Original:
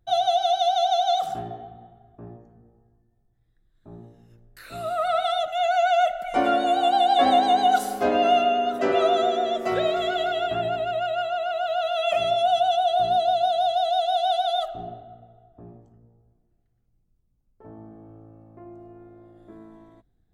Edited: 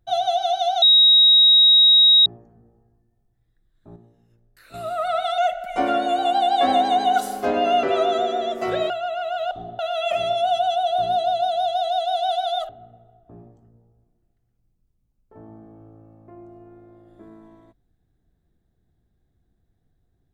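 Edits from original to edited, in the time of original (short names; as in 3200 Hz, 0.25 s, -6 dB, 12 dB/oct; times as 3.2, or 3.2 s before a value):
0.82–2.26 bleep 3800 Hz -9.5 dBFS
3.96–4.74 gain -7 dB
5.38–5.96 cut
8.41–8.87 cut
9.94–11.19 cut
14.7–14.98 move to 11.8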